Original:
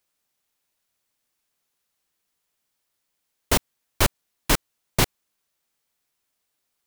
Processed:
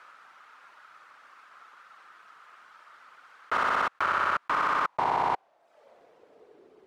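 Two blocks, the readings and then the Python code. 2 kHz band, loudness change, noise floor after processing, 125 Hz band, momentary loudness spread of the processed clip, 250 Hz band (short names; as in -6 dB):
+1.5 dB, -2.0 dB, -65 dBFS, -19.5 dB, 4 LU, -12.0 dB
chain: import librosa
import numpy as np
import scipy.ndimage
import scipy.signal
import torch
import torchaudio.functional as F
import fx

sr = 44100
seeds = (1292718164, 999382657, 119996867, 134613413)

p1 = fx.lowpass(x, sr, hz=2800.0, slope=6)
p2 = fx.dereverb_blind(p1, sr, rt60_s=0.65)
p3 = fx.filter_sweep_bandpass(p2, sr, from_hz=1300.0, to_hz=400.0, start_s=4.37, end_s=6.6, q=4.5)
p4 = p3 + fx.echo_feedback(p3, sr, ms=61, feedback_pct=44, wet_db=-7, dry=0)
p5 = fx.env_flatten(p4, sr, amount_pct=100)
y = p5 * 10.0 ** (3.0 / 20.0)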